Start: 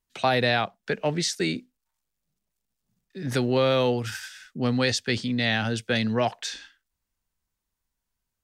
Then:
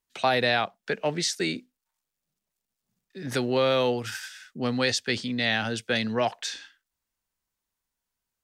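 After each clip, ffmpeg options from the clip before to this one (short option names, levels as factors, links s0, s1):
-af "lowshelf=f=170:g=-9.5"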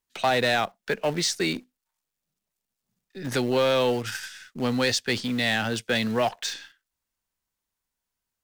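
-filter_complex "[0:a]asplit=2[s0][s1];[s1]acrusher=bits=6:dc=4:mix=0:aa=0.000001,volume=0.355[s2];[s0][s2]amix=inputs=2:normalize=0,asoftclip=type=tanh:threshold=0.2"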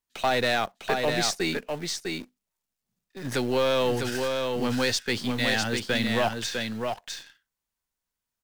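-filter_complex "[0:a]asplit=2[s0][s1];[s1]acrusher=bits=3:dc=4:mix=0:aa=0.000001,volume=0.447[s2];[s0][s2]amix=inputs=2:normalize=0,aecho=1:1:652:0.596,volume=0.668"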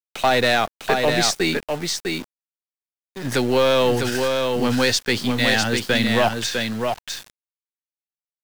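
-af "aeval=exprs='val(0)*gte(abs(val(0)),0.00708)':c=same,volume=2.11"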